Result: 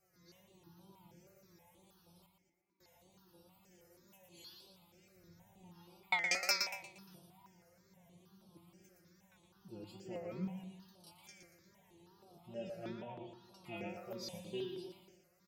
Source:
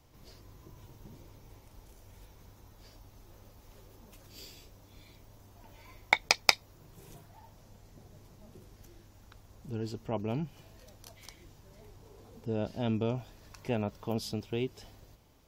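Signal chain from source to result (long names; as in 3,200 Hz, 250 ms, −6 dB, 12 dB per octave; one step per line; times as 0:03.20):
0:05.15–0:05.72: low-shelf EQ 190 Hz +11.5 dB
0:12.86–0:13.72: treble cut that deepens with the level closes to 1,700 Hz, closed at −27 dBFS
high-pass filter 110 Hz 12 dB per octave
stiff-string resonator 180 Hz, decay 0.48 s, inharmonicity 0.002
0:02.26–0:02.81: formant filter u
tape wow and flutter 120 cents
on a send: repeating echo 117 ms, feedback 42%, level −6 dB
on the sum: step-sequenced phaser 6.3 Hz 950–6,900 Hz
level +9.5 dB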